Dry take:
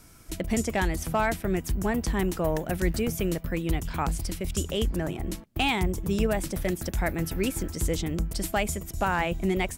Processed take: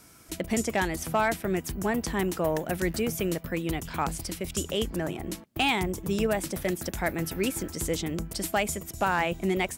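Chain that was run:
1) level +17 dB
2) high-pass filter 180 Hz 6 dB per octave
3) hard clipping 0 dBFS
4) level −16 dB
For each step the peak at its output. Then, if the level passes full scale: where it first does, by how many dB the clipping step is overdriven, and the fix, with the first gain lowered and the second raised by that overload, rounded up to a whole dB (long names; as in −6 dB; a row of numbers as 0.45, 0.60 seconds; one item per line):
+5.0, +3.0, 0.0, −16.0 dBFS
step 1, 3.0 dB
step 1 +14 dB, step 4 −13 dB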